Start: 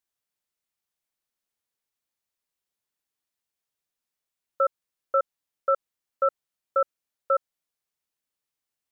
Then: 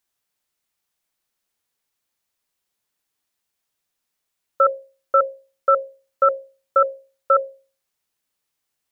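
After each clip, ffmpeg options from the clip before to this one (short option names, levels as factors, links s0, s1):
-af "bandreject=f=60:t=h:w=6,bandreject=f=120:t=h:w=6,bandreject=f=180:t=h:w=6,bandreject=f=240:t=h:w=6,bandreject=f=300:t=h:w=6,bandreject=f=360:t=h:w=6,bandreject=f=420:t=h:w=6,bandreject=f=480:t=h:w=6,bandreject=f=540:t=h:w=6,bandreject=f=600:t=h:w=6,volume=2.51"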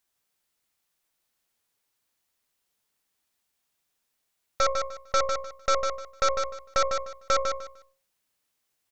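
-af "alimiter=limit=0.158:level=0:latency=1:release=104,aeval=exprs='0.158*(cos(1*acos(clip(val(0)/0.158,-1,1)))-cos(1*PI/2))+0.0447*(cos(6*acos(clip(val(0)/0.158,-1,1)))-cos(6*PI/2))':c=same,aecho=1:1:151|302|453:0.501|0.105|0.0221"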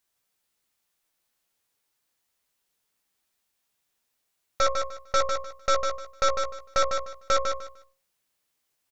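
-filter_complex "[0:a]asplit=2[s0][s1];[s1]adelay=16,volume=0.398[s2];[s0][s2]amix=inputs=2:normalize=0"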